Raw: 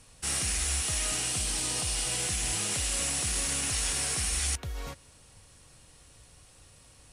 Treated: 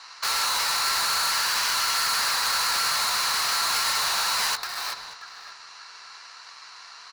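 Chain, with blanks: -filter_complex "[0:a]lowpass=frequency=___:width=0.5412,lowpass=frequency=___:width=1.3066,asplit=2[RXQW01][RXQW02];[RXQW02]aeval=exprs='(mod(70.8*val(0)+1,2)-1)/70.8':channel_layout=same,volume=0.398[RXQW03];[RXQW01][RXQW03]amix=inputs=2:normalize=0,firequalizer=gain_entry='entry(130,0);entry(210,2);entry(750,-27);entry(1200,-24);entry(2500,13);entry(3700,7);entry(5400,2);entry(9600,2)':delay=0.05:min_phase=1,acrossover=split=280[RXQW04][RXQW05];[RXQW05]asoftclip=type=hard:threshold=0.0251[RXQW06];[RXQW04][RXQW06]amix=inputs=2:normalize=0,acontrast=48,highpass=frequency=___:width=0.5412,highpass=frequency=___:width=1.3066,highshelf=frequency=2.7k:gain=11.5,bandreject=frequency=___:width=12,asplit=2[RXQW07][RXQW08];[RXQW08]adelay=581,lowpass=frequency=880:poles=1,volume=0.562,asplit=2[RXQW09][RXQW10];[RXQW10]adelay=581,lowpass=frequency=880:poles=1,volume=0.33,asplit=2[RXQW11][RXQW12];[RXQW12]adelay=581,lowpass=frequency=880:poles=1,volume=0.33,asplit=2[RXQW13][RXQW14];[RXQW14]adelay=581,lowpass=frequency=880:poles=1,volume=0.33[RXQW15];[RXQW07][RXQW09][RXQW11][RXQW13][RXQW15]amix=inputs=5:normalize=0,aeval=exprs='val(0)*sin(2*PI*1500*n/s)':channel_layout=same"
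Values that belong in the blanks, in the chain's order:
4.3k, 4.3k, 130, 130, 1.8k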